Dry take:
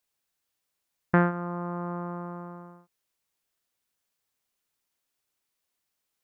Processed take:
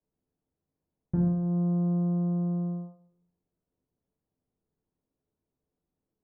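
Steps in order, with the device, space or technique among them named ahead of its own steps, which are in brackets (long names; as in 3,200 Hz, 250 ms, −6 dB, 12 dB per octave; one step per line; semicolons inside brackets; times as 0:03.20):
television next door (downward compressor 4 to 1, threshold −40 dBFS, peak gain reduction 19 dB; low-pass filter 350 Hz 12 dB per octave; convolution reverb RT60 0.65 s, pre-delay 4 ms, DRR −3.5 dB)
level +7.5 dB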